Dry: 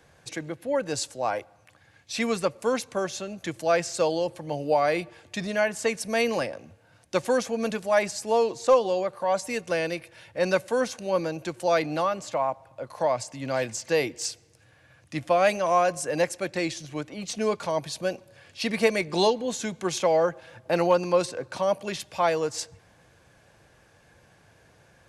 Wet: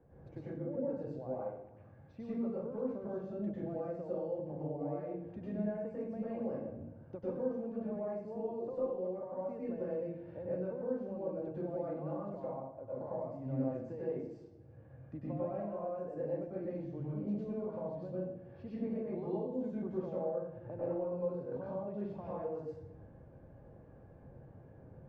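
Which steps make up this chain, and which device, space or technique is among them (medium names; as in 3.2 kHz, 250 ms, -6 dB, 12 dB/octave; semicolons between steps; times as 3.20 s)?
television next door (compression 5:1, threshold -39 dBFS, peak gain reduction 21.5 dB; low-pass 520 Hz 12 dB/octave; reverberation RT60 0.80 s, pre-delay 93 ms, DRR -8 dB); trim -3.5 dB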